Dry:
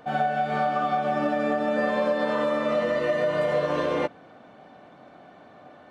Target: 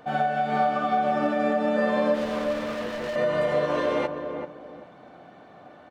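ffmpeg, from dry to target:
-filter_complex "[0:a]asettb=1/sr,asplit=3[a][b][c];[a]atrim=end=2.144[d];[b]atrim=start=2.14:end=3.16,asetpts=PTS-STARTPTS,afade=t=in:d=0.004:c=qsin,afade=t=out:st=1.016:d=0.004:c=qsin,volume=30dB,asoftclip=hard,volume=-30dB[e];[c]atrim=start=3.156[f];[d][e]acrossfade=d=0.004:c1=hsin:c2=qsin[g];[g][f]acrossfade=d=0.004:c1=qsin:c2=hsin,asplit=2[h][i];[i]adelay=387,lowpass=f=1.1k:p=1,volume=-6dB,asplit=2[j][k];[k]adelay=387,lowpass=f=1.1k:p=1,volume=0.31,asplit=2[l][m];[m]adelay=387,lowpass=f=1.1k:p=1,volume=0.31,asplit=2[n][o];[o]adelay=387,lowpass=f=1.1k:p=1,volume=0.31[p];[j][l][n][p]amix=inputs=4:normalize=0[q];[h][q]amix=inputs=2:normalize=0"

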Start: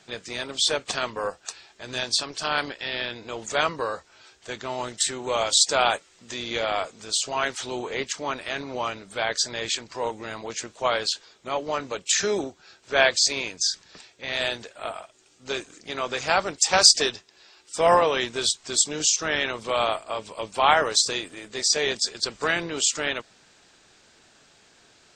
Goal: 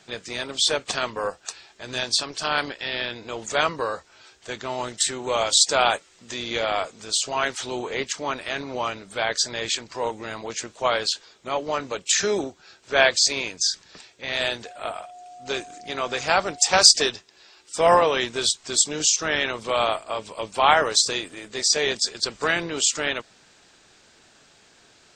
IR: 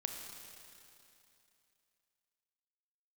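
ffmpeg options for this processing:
-filter_complex "[0:a]asettb=1/sr,asplit=3[a][b][c];[a]atrim=end=14.654[d];[b]atrim=start=14.65:end=16.71,asetpts=PTS-STARTPTS,afade=t=in:d=0.004:c=qsin,afade=t=out:st=2.056:d=0.004:c=qsin,aeval=exprs='val(0)+0.00794*sin(2*PI*720*n/s)':c=same[e];[c]atrim=start=16.706[f];[d][e]acrossfade=d=0.004:c1=hsin:c2=qsin[g];[g][f]acrossfade=d=0.004:c1=qsin:c2=hsin,volume=1.5dB"

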